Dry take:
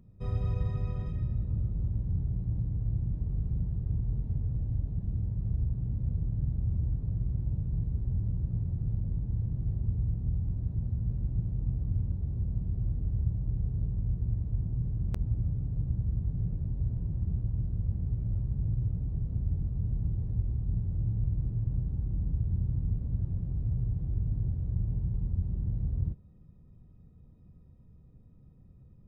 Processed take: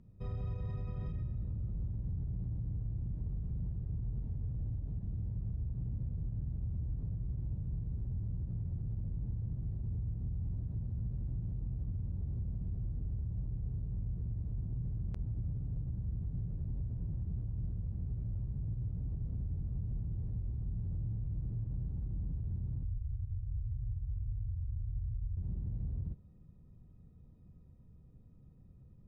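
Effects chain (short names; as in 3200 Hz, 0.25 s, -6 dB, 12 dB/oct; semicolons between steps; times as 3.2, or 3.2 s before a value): 22.83–25.37 EQ curve 100 Hz 0 dB, 240 Hz -29 dB, 1300 Hz -12 dB, 1900 Hz -17 dB; limiter -28.5 dBFS, peak gain reduction 11 dB; air absorption 62 m; gain -2.5 dB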